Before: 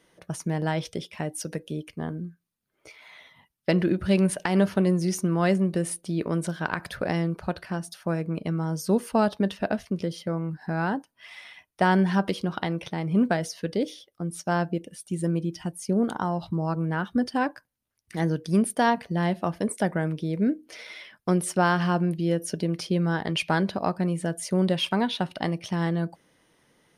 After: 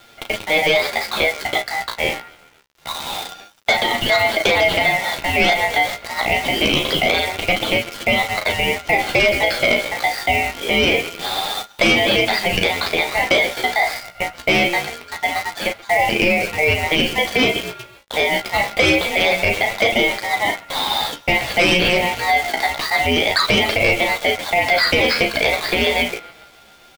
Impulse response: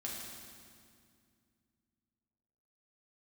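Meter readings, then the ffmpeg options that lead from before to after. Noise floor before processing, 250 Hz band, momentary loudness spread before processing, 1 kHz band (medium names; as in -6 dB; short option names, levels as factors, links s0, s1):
-73 dBFS, -1.0 dB, 11 LU, +9.5 dB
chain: -filter_complex "[0:a]asplit=5[s0][s1][s2][s3][s4];[s1]adelay=129,afreqshift=33,volume=0.0891[s5];[s2]adelay=258,afreqshift=66,volume=0.0462[s6];[s3]adelay=387,afreqshift=99,volume=0.024[s7];[s4]adelay=516,afreqshift=132,volume=0.0126[s8];[s0][s5][s6][s7][s8]amix=inputs=5:normalize=0,acontrast=47,bandreject=f=970:w=11,highpass=f=580:t=q:w=0.5412,highpass=f=580:t=q:w=1.307,lowpass=f=3000:t=q:w=0.5176,lowpass=f=3000:t=q:w=0.7071,lowpass=f=3000:t=q:w=1.932,afreqshift=150,asplit=2[s9][s10];[s10]adelay=36,volume=0.422[s11];[s9][s11]amix=inputs=2:normalize=0,acrusher=bits=8:dc=4:mix=0:aa=0.000001,aeval=exprs='val(0)*sin(2*PI*1400*n/s)':c=same,asoftclip=type=tanh:threshold=0.1,flanger=delay=8.7:depth=8:regen=21:speed=0.25:shape=sinusoidal,alimiter=level_in=28.2:limit=0.891:release=50:level=0:latency=1,volume=0.501"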